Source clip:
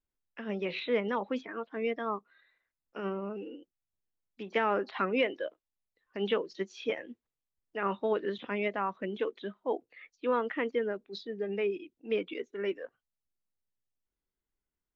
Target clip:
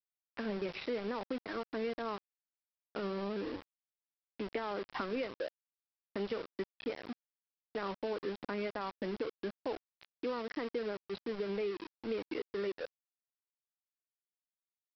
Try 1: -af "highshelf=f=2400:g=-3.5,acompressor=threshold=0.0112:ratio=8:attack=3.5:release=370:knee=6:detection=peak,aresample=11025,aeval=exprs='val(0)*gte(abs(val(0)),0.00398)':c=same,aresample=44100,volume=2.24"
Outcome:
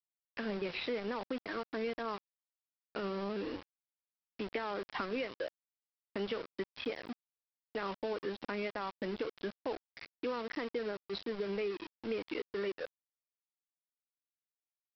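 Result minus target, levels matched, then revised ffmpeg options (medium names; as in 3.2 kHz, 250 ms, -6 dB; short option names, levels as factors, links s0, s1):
4 kHz band +2.5 dB
-af "highshelf=f=2400:g=-13,acompressor=threshold=0.0112:ratio=8:attack=3.5:release=370:knee=6:detection=peak,aresample=11025,aeval=exprs='val(0)*gte(abs(val(0)),0.00398)':c=same,aresample=44100,volume=2.24"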